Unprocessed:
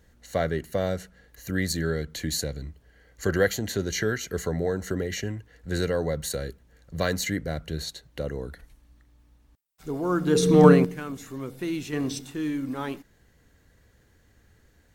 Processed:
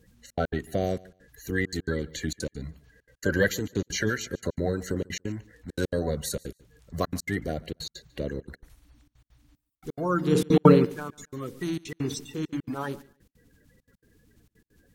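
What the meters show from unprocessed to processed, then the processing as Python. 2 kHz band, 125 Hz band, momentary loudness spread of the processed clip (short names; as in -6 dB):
-0.5 dB, -1.5 dB, 15 LU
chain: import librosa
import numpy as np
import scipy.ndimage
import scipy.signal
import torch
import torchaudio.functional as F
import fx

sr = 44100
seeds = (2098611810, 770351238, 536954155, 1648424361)

p1 = fx.spec_quant(x, sr, step_db=30)
p2 = fx.step_gate(p1, sr, bpm=200, pattern='xxxx.x.xx', floor_db=-60.0, edge_ms=4.5)
y = p2 + fx.echo_feedback(p2, sr, ms=144, feedback_pct=17, wet_db=-23, dry=0)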